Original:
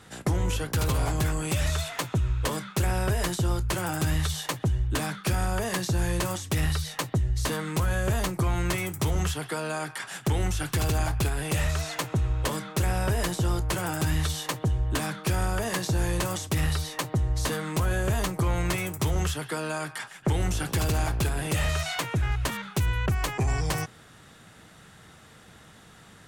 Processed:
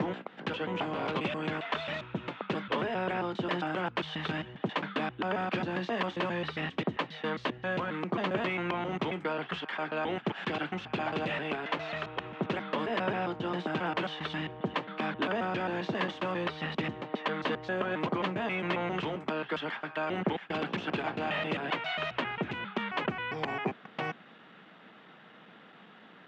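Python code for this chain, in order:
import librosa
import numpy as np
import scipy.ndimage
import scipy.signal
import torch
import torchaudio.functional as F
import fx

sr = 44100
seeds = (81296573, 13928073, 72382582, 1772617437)

y = fx.block_reorder(x, sr, ms=134.0, group=3)
y = scipy.signal.sosfilt(scipy.signal.ellip(3, 1.0, 80, [200.0, 3100.0], 'bandpass', fs=sr, output='sos'), y)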